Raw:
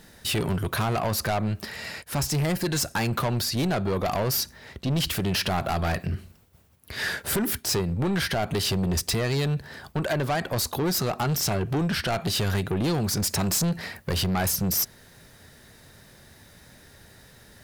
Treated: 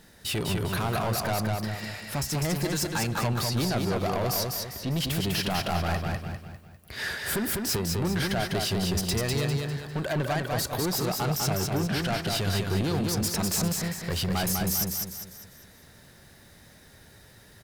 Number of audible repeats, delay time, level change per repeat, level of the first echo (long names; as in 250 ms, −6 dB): 5, 200 ms, −7.5 dB, −3.5 dB